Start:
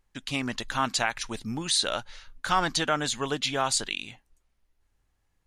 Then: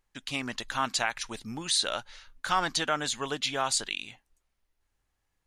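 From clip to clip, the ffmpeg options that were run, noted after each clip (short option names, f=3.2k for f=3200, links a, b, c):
-af "lowshelf=f=370:g=-5.5,volume=-1.5dB"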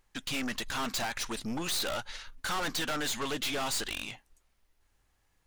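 -af "aeval=exprs='(tanh(89.1*val(0)+0.5)-tanh(0.5))/89.1':c=same,volume=8.5dB"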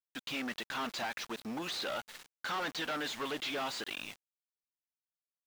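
-af "highpass=200,lowpass=4.3k,aeval=exprs='val(0)*gte(abs(val(0)),0.0075)':c=same,volume=-2.5dB"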